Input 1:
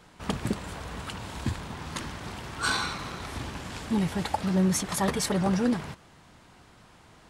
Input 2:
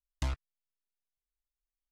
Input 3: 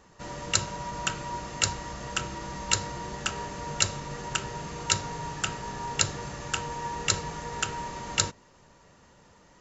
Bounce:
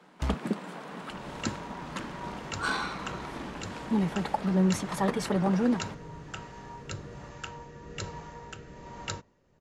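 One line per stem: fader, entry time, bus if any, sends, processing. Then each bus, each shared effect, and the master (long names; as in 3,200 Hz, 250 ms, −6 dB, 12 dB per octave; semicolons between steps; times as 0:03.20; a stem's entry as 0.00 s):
0.0 dB, 0.00 s, no send, Butterworth high-pass 160 Hz 48 dB per octave
+1.5 dB, 0.00 s, no send, high-shelf EQ 4,900 Hz +9 dB
−4.5 dB, 0.90 s, no send, rotating-speaker cabinet horn 1.2 Hz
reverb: not used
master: high-shelf EQ 3,300 Hz −12 dB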